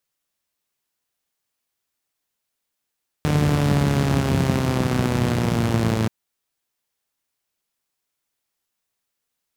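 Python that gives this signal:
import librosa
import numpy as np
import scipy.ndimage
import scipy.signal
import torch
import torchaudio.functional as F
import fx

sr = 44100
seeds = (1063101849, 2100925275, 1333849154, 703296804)

y = fx.engine_four_rev(sr, seeds[0], length_s=2.83, rpm=4500, resonances_hz=(98.0, 160.0), end_rpm=3300)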